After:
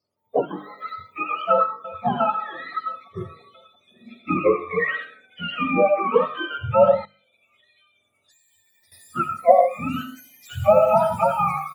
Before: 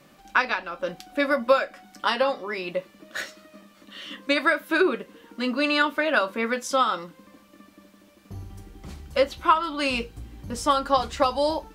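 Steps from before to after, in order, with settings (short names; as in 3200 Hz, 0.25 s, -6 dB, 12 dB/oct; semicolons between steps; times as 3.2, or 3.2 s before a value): spectrum mirrored in octaves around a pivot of 840 Hz; thin delay 0.701 s, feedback 63%, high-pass 5400 Hz, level -7 dB; reverb RT60 0.70 s, pre-delay 45 ms, DRR 5 dB; spectral noise reduction 22 dB; 7.05–8.92 compressor 12:1, threshold -58 dBFS, peak gain reduction 17.5 dB; notches 50/100/150/200/250/300 Hz; 1.5–2.05 echo throw 0.34 s, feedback 65%, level -18 dB; AGC gain up to 10 dB; bell 640 Hz +13 dB 1.7 oct; gain -11.5 dB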